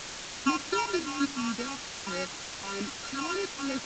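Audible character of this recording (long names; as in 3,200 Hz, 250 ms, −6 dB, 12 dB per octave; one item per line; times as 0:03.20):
a buzz of ramps at a fixed pitch in blocks of 32 samples
phaser sweep stages 8, 3.3 Hz, lowest notch 460–1,100 Hz
a quantiser's noise floor 6 bits, dither triangular
G.722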